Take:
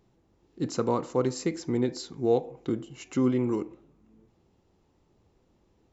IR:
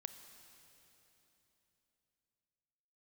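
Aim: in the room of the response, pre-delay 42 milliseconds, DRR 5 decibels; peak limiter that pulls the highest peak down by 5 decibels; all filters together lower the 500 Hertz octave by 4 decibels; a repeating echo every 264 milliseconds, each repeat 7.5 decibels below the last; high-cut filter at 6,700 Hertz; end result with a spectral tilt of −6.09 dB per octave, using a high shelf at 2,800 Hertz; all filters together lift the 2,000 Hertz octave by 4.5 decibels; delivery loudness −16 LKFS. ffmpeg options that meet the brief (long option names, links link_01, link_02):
-filter_complex "[0:a]lowpass=6700,equalizer=frequency=500:width_type=o:gain=-5,equalizer=frequency=2000:width_type=o:gain=8.5,highshelf=frequency=2800:gain=-8,alimiter=limit=-19.5dB:level=0:latency=1,aecho=1:1:264|528|792|1056|1320:0.422|0.177|0.0744|0.0312|0.0131,asplit=2[link_01][link_02];[1:a]atrim=start_sample=2205,adelay=42[link_03];[link_02][link_03]afir=irnorm=-1:irlink=0,volume=-1dB[link_04];[link_01][link_04]amix=inputs=2:normalize=0,volume=15dB"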